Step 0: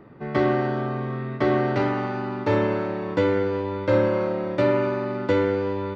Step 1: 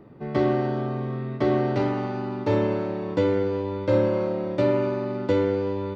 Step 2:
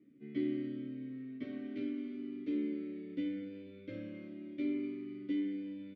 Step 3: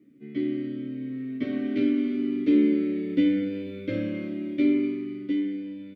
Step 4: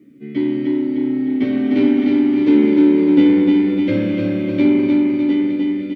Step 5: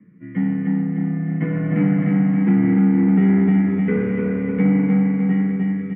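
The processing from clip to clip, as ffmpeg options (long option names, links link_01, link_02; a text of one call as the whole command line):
ffmpeg -i in.wav -af "equalizer=frequency=1600:width=0.9:gain=-7" out.wav
ffmpeg -i in.wav -filter_complex "[0:a]asplit=3[link_01][link_02][link_03];[link_01]bandpass=frequency=270:width_type=q:width=8,volume=0dB[link_04];[link_02]bandpass=frequency=2290:width_type=q:width=8,volume=-6dB[link_05];[link_03]bandpass=frequency=3010:width_type=q:width=8,volume=-9dB[link_06];[link_04][link_05][link_06]amix=inputs=3:normalize=0,asplit=2[link_07][link_08];[link_08]adelay=10.6,afreqshift=-0.41[link_09];[link_07][link_09]amix=inputs=2:normalize=1,volume=-1dB" out.wav
ffmpeg -i in.wav -af "dynaudnorm=framelen=200:gausssize=13:maxgain=9dB,volume=6.5dB" out.wav
ffmpeg -i in.wav -filter_complex "[0:a]aecho=1:1:303|606|909|1212|1515|1818|2121|2424:0.668|0.381|0.217|0.124|0.0706|0.0402|0.0229|0.0131,asplit=2[link_01][link_02];[link_02]asoftclip=type=tanh:threshold=-25.5dB,volume=-6.5dB[link_03];[link_01][link_03]amix=inputs=2:normalize=0,volume=6.5dB" out.wav
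ffmpeg -i in.wav -af "highpass=frequency=300:width_type=q:width=0.5412,highpass=frequency=300:width_type=q:width=1.307,lowpass=frequency=2200:width_type=q:width=0.5176,lowpass=frequency=2200:width_type=q:width=0.7071,lowpass=frequency=2200:width_type=q:width=1.932,afreqshift=-100,alimiter=level_in=9dB:limit=-1dB:release=50:level=0:latency=1,volume=-7.5dB" out.wav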